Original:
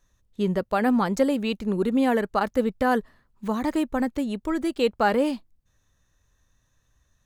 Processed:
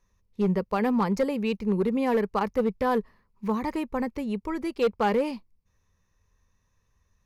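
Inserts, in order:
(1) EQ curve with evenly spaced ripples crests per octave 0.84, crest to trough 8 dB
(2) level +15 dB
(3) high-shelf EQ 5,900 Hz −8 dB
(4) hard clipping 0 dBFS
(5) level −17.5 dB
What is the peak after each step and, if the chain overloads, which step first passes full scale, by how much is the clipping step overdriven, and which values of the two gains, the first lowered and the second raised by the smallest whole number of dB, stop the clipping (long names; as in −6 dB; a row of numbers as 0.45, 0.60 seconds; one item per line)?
−8.0, +7.0, +6.5, 0.0, −17.5 dBFS
step 2, 6.5 dB
step 2 +8 dB, step 5 −10.5 dB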